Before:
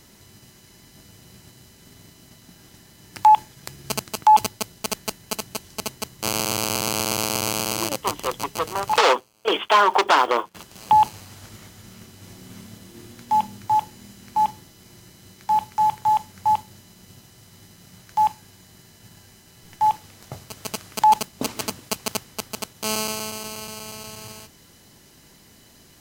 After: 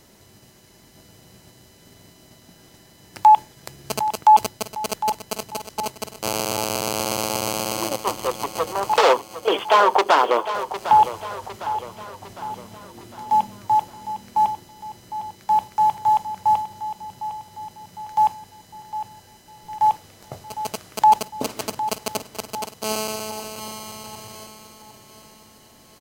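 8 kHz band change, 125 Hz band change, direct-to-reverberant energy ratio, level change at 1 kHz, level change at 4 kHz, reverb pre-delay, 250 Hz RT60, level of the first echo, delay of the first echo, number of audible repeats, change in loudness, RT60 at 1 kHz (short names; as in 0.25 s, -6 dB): -2.0 dB, -1.5 dB, none, +1.5 dB, -2.0 dB, none, none, -12.0 dB, 0.756 s, 4, +0.5 dB, none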